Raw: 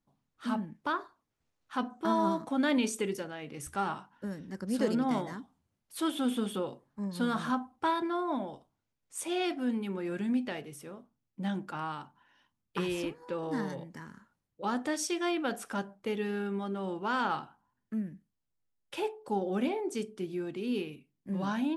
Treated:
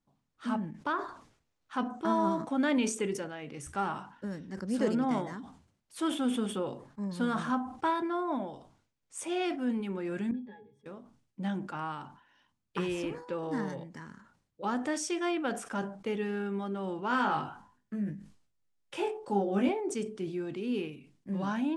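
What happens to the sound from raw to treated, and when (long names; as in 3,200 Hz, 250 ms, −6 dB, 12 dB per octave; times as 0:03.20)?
0:10.31–0:10.86: resonances in every octave G#, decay 0.16 s
0:17.08–0:19.69: double-tracking delay 20 ms −3 dB
whole clip: low-pass filter 9,300 Hz 24 dB per octave; dynamic equaliser 4,100 Hz, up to −6 dB, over −58 dBFS, Q 2.2; level that may fall only so fast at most 100 dB per second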